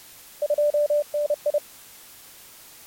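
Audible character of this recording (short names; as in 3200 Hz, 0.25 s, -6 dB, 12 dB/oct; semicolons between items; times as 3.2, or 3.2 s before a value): random-step tremolo 4 Hz; a quantiser's noise floor 8-bit, dither triangular; Vorbis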